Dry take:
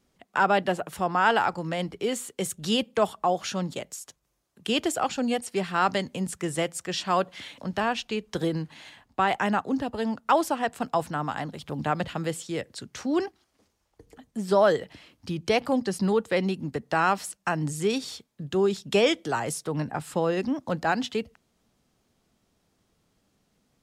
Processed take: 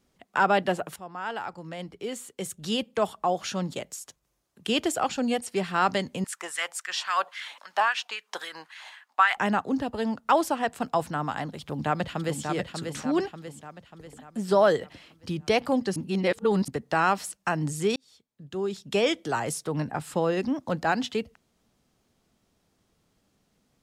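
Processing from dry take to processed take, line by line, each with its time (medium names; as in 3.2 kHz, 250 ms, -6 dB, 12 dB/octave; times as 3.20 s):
0.96–3.74 s: fade in, from -16 dB
6.24–9.37 s: LFO high-pass sine 3.7 Hz 800–1700 Hz
11.60–12.41 s: echo throw 590 ms, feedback 50%, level -5.5 dB
15.96–16.68 s: reverse
17.96–19.39 s: fade in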